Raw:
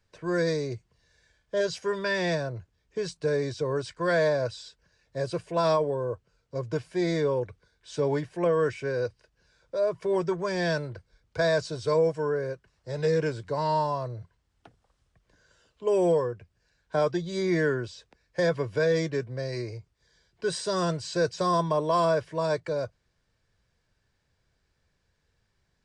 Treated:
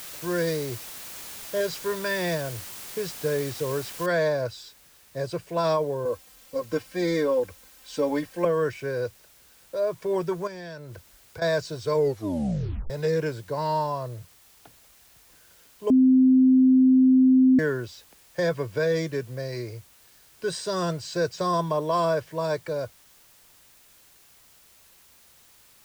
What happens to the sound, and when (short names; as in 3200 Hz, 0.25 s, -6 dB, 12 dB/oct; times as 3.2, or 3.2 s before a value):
4.06 noise floor step -40 dB -56 dB
6.05–8.45 comb 3.8 ms, depth 99%
10.47–11.42 compressor, threshold -36 dBFS
11.94 tape stop 0.96 s
15.9–17.59 bleep 259 Hz -13.5 dBFS